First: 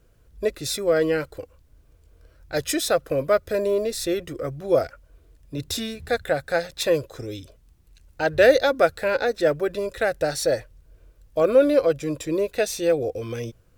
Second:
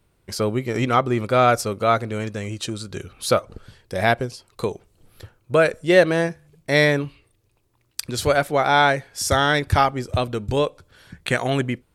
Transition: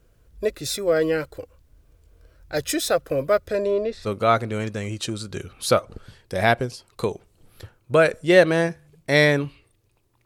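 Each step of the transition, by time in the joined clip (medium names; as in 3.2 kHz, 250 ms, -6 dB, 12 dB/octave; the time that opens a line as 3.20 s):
first
3.47–4.08 s: low-pass 10 kHz -> 1.8 kHz
4.05 s: go over to second from 1.65 s, crossfade 0.06 s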